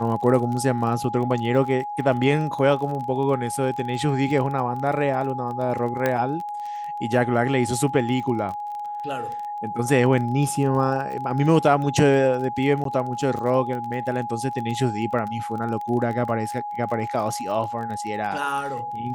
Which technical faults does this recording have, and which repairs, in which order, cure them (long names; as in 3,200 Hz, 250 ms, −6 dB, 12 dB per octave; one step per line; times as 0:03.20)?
surface crackle 24 per second −30 dBFS
whistle 830 Hz −28 dBFS
0:06.06: click −9 dBFS
0:12.84–0:12.85: drop-out 13 ms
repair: click removal
notch filter 830 Hz, Q 30
repair the gap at 0:12.84, 13 ms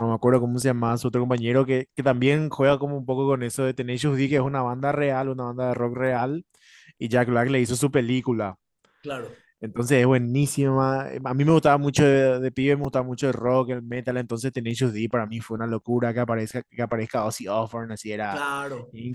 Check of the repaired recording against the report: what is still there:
0:06.06: click